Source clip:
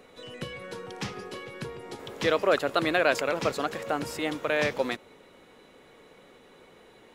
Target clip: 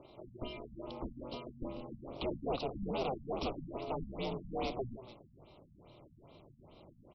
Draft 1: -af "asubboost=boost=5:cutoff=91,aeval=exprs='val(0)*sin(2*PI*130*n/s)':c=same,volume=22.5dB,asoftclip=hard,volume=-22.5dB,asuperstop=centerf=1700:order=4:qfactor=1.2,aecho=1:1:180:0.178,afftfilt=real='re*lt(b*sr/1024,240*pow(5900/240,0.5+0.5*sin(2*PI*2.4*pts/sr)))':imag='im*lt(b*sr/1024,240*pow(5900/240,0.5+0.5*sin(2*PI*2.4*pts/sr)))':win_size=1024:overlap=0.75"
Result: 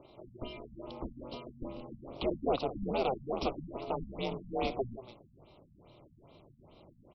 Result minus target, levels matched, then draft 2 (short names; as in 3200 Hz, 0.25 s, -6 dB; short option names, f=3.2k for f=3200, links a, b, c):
overloaded stage: distortion -6 dB
-af "asubboost=boost=5:cutoff=91,aeval=exprs='val(0)*sin(2*PI*130*n/s)':c=same,volume=30.5dB,asoftclip=hard,volume=-30.5dB,asuperstop=centerf=1700:order=4:qfactor=1.2,aecho=1:1:180:0.178,afftfilt=real='re*lt(b*sr/1024,240*pow(5900/240,0.5+0.5*sin(2*PI*2.4*pts/sr)))':imag='im*lt(b*sr/1024,240*pow(5900/240,0.5+0.5*sin(2*PI*2.4*pts/sr)))':win_size=1024:overlap=0.75"